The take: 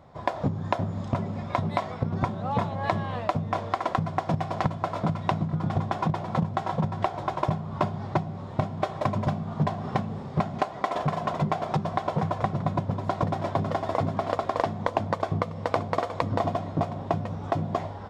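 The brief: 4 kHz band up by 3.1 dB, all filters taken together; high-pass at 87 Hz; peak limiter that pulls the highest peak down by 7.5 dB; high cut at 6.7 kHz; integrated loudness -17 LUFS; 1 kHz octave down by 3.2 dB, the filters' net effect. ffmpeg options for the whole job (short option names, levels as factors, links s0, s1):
-af "highpass=87,lowpass=6700,equalizer=f=1000:t=o:g=-4.5,equalizer=f=4000:t=o:g=4.5,volume=5.62,alimiter=limit=0.708:level=0:latency=1"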